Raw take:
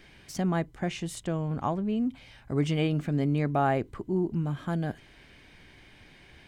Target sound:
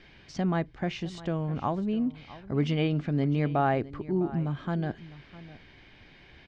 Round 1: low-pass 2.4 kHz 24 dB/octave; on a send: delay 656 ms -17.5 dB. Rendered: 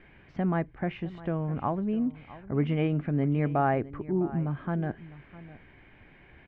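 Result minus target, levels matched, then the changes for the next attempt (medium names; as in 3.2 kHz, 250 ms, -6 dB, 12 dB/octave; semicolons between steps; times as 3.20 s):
4 kHz band -9.0 dB
change: low-pass 5.2 kHz 24 dB/octave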